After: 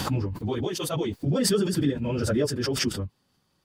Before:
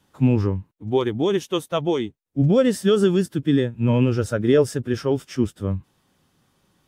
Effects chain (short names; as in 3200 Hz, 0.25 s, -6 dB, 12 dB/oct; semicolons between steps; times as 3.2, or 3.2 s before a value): bell 4600 Hz +11 dB 0.2 oct; plain phase-vocoder stretch 0.53×; backwards sustainer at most 24 dB/s; gain -4 dB